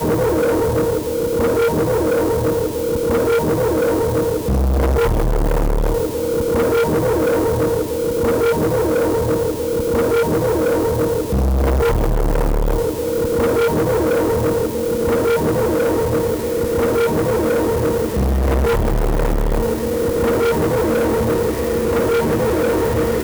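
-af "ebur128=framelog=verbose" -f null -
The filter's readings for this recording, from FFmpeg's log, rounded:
Integrated loudness:
  I:         -17.8 LUFS
  Threshold: -27.8 LUFS
Loudness range:
  LRA:         0.8 LU
  Threshold: -37.8 LUFS
  LRA low:   -18.2 LUFS
  LRA high:  -17.4 LUFS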